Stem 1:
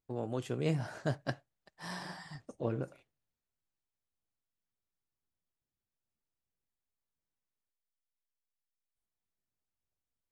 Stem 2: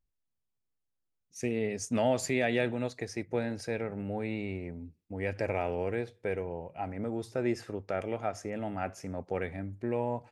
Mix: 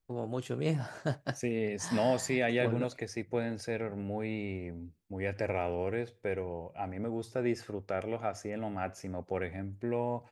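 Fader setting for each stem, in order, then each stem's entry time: +1.0 dB, -1.0 dB; 0.00 s, 0.00 s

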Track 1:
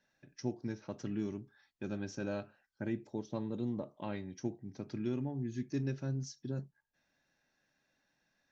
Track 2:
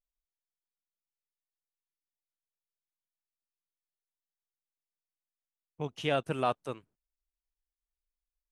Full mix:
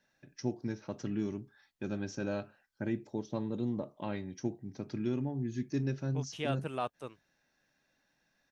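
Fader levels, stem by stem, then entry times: +2.5 dB, -6.0 dB; 0.00 s, 0.35 s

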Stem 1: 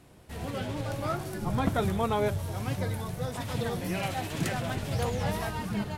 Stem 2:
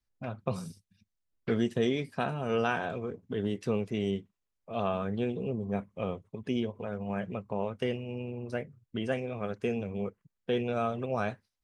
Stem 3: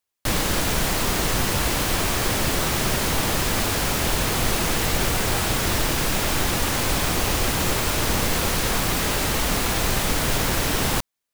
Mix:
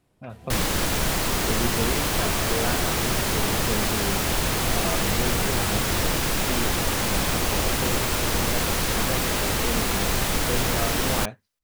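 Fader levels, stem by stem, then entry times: -12.0 dB, -1.0 dB, -1.5 dB; 0.00 s, 0.00 s, 0.25 s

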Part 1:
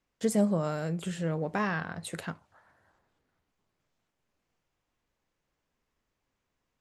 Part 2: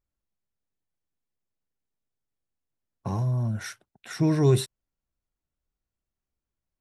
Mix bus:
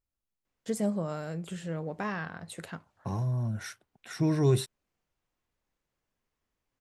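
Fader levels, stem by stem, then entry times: -4.0 dB, -4.0 dB; 0.45 s, 0.00 s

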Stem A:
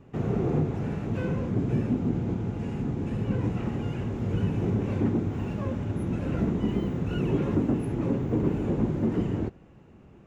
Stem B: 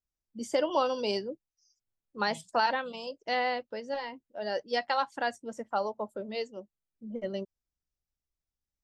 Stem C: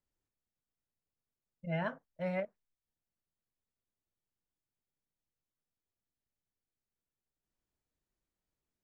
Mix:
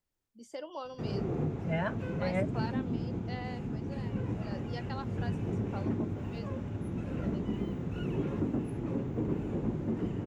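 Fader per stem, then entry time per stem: -7.0 dB, -14.0 dB, +2.5 dB; 0.85 s, 0.00 s, 0.00 s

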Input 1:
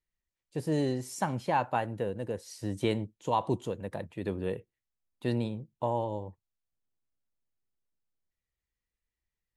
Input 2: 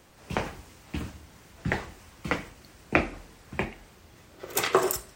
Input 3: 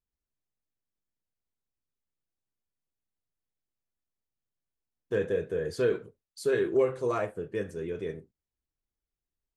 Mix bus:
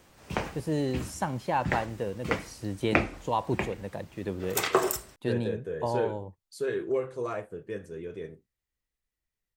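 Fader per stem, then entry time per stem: 0.0 dB, -1.5 dB, -4.0 dB; 0.00 s, 0.00 s, 0.15 s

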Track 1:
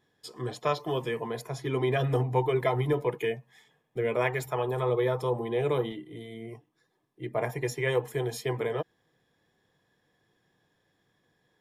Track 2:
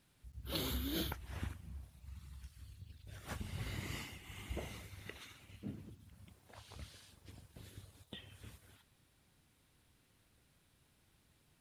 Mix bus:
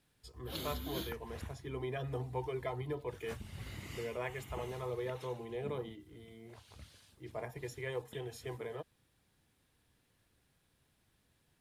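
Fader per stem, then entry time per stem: -12.5 dB, -3.0 dB; 0.00 s, 0.00 s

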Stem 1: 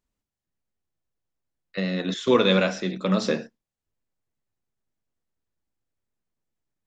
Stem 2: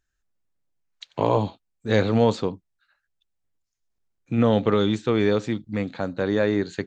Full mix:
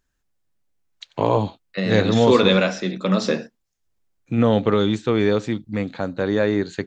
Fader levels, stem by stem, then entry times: +3.0 dB, +2.0 dB; 0.00 s, 0.00 s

